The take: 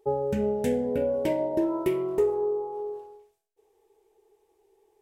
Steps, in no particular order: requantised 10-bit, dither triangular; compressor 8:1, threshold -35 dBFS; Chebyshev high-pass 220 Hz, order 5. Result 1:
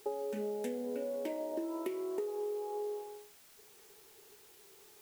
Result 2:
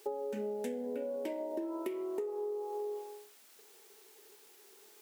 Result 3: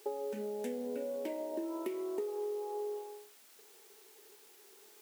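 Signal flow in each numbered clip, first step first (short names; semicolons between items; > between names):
Chebyshev high-pass > compressor > requantised; requantised > Chebyshev high-pass > compressor; compressor > requantised > Chebyshev high-pass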